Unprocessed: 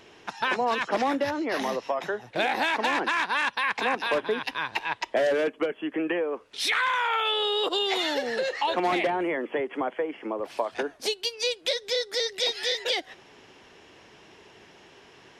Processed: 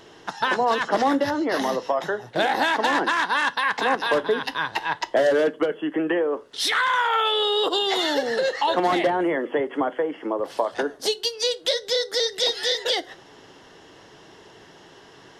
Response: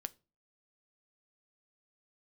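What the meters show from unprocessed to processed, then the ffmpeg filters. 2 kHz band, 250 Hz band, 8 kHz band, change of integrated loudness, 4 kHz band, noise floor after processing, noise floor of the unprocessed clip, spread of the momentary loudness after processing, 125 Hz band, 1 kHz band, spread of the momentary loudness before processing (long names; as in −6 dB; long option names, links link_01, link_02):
+3.0 dB, +5.0 dB, +4.5 dB, +4.0 dB, +3.5 dB, −49 dBFS, −54 dBFS, 6 LU, +5.5 dB, +4.5 dB, 6 LU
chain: -filter_complex "[0:a]equalizer=frequency=2400:width_type=o:width=0.24:gain=-13.5[link_01];[1:a]atrim=start_sample=2205[link_02];[link_01][link_02]afir=irnorm=-1:irlink=0,volume=7.5dB"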